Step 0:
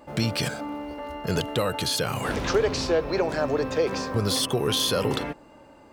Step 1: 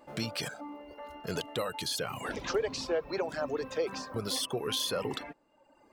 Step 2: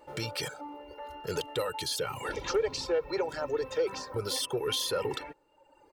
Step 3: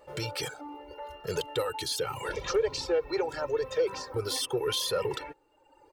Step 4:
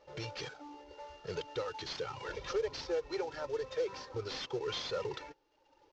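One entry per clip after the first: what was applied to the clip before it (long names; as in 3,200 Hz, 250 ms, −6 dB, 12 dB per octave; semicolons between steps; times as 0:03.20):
reverb reduction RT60 0.98 s; parametric band 69 Hz −8 dB 2.5 octaves; level −6.5 dB
comb filter 2.2 ms, depth 68%; soft clipping −19 dBFS, distortion −22 dB
flanger 0.81 Hz, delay 1.6 ms, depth 1.2 ms, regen −38%; level +4.5 dB
variable-slope delta modulation 32 kbit/s; level −7 dB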